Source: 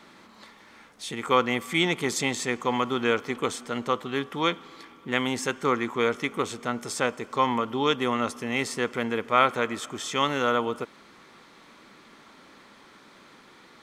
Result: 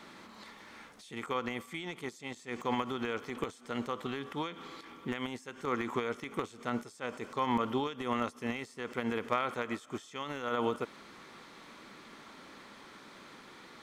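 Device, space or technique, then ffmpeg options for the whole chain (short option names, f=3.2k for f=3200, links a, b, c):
de-esser from a sidechain: -filter_complex "[0:a]asplit=2[a][b];[b]highpass=f=4.6k:w=0.5412,highpass=f=4.6k:w=1.3066,apad=whole_len=609635[c];[a][c]sidechaincompress=threshold=-52dB:ratio=10:attack=0.55:release=86"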